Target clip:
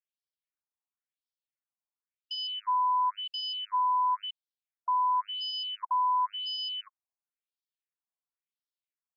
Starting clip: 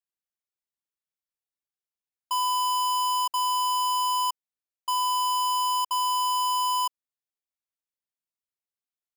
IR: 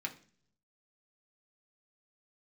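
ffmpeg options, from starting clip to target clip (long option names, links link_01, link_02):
-af "afftfilt=real='re*between(b*sr/1024,800*pow(4200/800,0.5+0.5*sin(2*PI*0.95*pts/sr))/1.41,800*pow(4200/800,0.5+0.5*sin(2*PI*0.95*pts/sr))*1.41)':imag='im*between(b*sr/1024,800*pow(4200/800,0.5+0.5*sin(2*PI*0.95*pts/sr))/1.41,800*pow(4200/800,0.5+0.5*sin(2*PI*0.95*pts/sr))*1.41)':win_size=1024:overlap=0.75"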